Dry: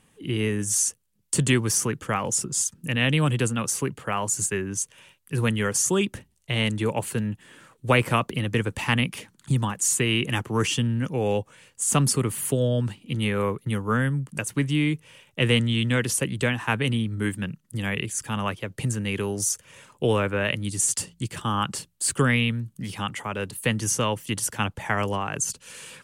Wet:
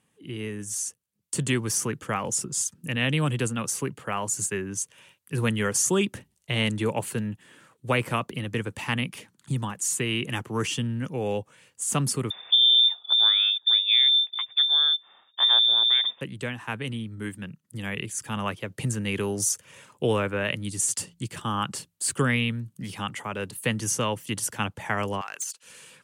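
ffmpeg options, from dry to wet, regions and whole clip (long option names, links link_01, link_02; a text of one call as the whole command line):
ffmpeg -i in.wav -filter_complex "[0:a]asettb=1/sr,asplit=3[link_01][link_02][link_03];[link_01]atrim=end=12.304[link_04];[link_02]atrim=start=12.3:end=16.21,asetpts=PTS-STARTPTS,afade=type=in:duration=0.004:curve=qsin,afade=type=out:start_time=3.906:duration=0.004:curve=qsin,lowshelf=frequency=300:width_type=q:width=1.5:gain=10,lowpass=frequency=3100:width_type=q:width=0.5098,lowpass=frequency=3100:width_type=q:width=0.6013,lowpass=frequency=3100:width_type=q:width=0.9,lowpass=frequency=3100:width_type=q:width=2.563,afreqshift=-3700[link_05];[link_03]atrim=start=16.206[link_06];[link_04][link_05]acrossfade=duration=0.004:curve1=hsin:curve2=qsin[link_07];[link_07][link_06]acrossfade=duration=0.004:curve1=qsin:curve2=hsin,asettb=1/sr,asplit=3[link_08][link_09][link_10];[link_08]atrim=end=25.214[link_11];[link_09]atrim=start=25.21:end=25.63,asetpts=PTS-STARTPTS,afade=type=in:duration=0.004:curve=qsin,afade=type=out:start_time=0.416:duration=0.004:curve=qsin,highpass=1100,asoftclip=type=hard:threshold=-23.5dB[link_12];[link_10]atrim=start=25.626[link_13];[link_11][link_12]acrossfade=duration=0.004:curve1=hsin:curve2=qsin[link_14];[link_14][link_13]acrossfade=duration=0.004:curve1=qsin:curve2=hsin,highpass=89,dynaudnorm=framelen=970:gausssize=3:maxgain=11.5dB,volume=-8.5dB" out.wav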